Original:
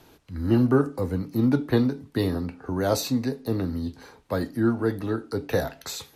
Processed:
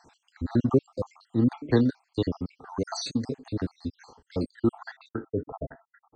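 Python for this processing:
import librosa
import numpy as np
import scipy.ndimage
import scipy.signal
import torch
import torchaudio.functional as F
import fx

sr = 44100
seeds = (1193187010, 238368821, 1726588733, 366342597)

y = fx.spec_dropout(x, sr, seeds[0], share_pct=63)
y = fx.brickwall_lowpass(y, sr, high_hz=fx.steps((0.0, 8800.0), (5.07, 2000.0)))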